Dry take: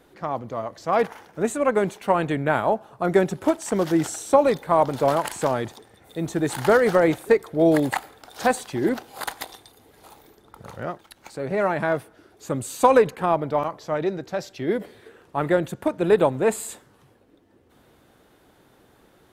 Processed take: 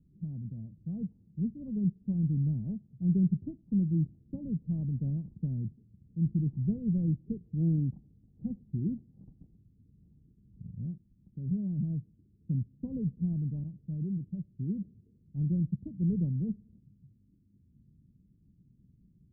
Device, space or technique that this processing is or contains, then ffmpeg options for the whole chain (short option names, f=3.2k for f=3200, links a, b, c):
the neighbour's flat through the wall: -af "lowpass=f=180:w=0.5412,lowpass=f=180:w=1.3066,equalizer=f=190:t=o:w=0.84:g=6"